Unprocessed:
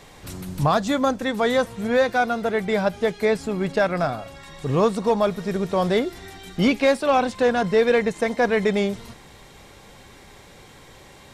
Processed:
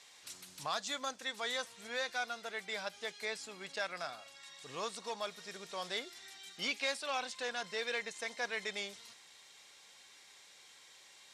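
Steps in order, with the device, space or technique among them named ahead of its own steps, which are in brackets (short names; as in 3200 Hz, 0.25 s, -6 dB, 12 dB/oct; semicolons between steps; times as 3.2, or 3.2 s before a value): piezo pickup straight into a mixer (LPF 6100 Hz 12 dB/oct; differentiator)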